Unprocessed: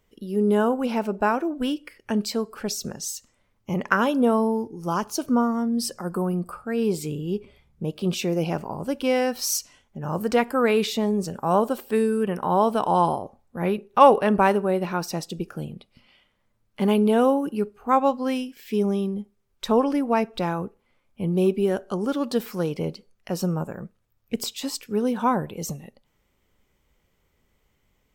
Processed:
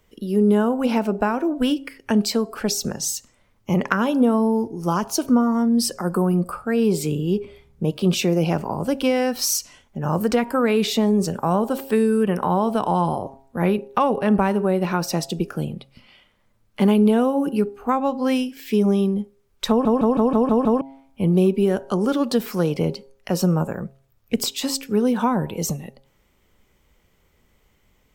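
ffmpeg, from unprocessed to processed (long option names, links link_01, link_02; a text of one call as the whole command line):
ffmpeg -i in.wav -filter_complex "[0:a]asplit=8[link_01][link_02][link_03][link_04][link_05][link_06][link_07][link_08];[link_01]atrim=end=19.852[link_09];[link_02]atrim=start=19.688:end=19.852[link_10];[link_03]atrim=start=19.688:end=19.852[link_11];[link_04]atrim=start=19.688:end=19.852[link_12];[link_05]atrim=start=19.688:end=19.852[link_13];[link_06]atrim=start=19.688:end=19.852[link_14];[link_07]atrim=start=19.688:end=19.852[link_15];[link_08]atrim=start=20.808[link_16];[link_09][link_10]acrossfade=duration=0.004:curve1=hsin:curve2=hsin[link_17];[link_17][link_11]acrossfade=duration=0.004:curve1=hsin:curve2=hsin[link_18];[link_18][link_12]acrossfade=duration=0.004:curve1=hsin:curve2=hsin[link_19];[link_19][link_13]acrossfade=duration=0.004:curve1=hsin:curve2=hsin[link_20];[link_20][link_14]acrossfade=duration=0.004:curve1=hsin:curve2=hsin[link_21];[link_21][link_15]acrossfade=duration=0.004:curve1=hsin:curve2=hsin[link_22];[link_22][link_16]acrossfade=duration=0.004:curve1=hsin:curve2=hsin,bandreject=frequency=135.2:width_type=h:width=4,bandreject=frequency=270.4:width_type=h:width=4,bandreject=frequency=405.6:width_type=h:width=4,bandreject=frequency=540.8:width_type=h:width=4,bandreject=frequency=676:width_type=h:width=4,bandreject=frequency=811.2:width_type=h:width=4,bandreject=frequency=946.4:width_type=h:width=4,acrossover=split=230[link_23][link_24];[link_24]acompressor=threshold=-25dB:ratio=5[link_25];[link_23][link_25]amix=inputs=2:normalize=0,volume=6.5dB" out.wav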